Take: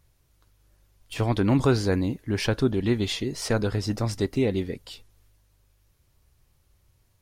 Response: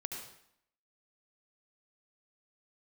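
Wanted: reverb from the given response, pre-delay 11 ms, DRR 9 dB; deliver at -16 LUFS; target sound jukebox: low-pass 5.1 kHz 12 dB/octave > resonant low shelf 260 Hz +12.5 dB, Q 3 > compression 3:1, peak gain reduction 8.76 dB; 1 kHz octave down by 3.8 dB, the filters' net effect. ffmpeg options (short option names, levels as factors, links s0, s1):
-filter_complex "[0:a]equalizer=f=1000:t=o:g=-3.5,asplit=2[s0][s1];[1:a]atrim=start_sample=2205,adelay=11[s2];[s1][s2]afir=irnorm=-1:irlink=0,volume=0.376[s3];[s0][s3]amix=inputs=2:normalize=0,lowpass=5100,lowshelf=f=260:t=q:w=3:g=12.5,acompressor=threshold=0.178:ratio=3,volume=1.41"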